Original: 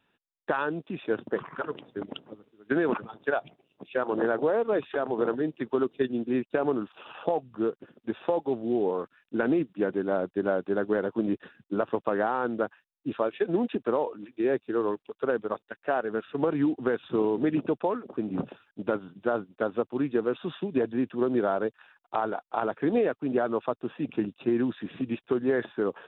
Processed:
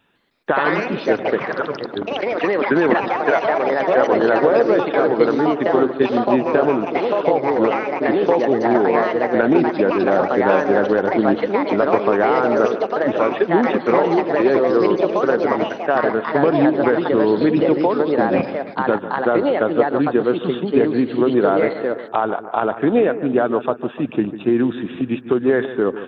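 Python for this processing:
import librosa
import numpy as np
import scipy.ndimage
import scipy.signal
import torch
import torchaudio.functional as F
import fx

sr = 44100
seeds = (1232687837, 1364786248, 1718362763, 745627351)

y = fx.echo_bbd(x, sr, ms=148, stages=2048, feedback_pct=54, wet_db=-13)
y = fx.echo_pitch(y, sr, ms=155, semitones=3, count=3, db_per_echo=-3.0)
y = y * librosa.db_to_amplitude(9.0)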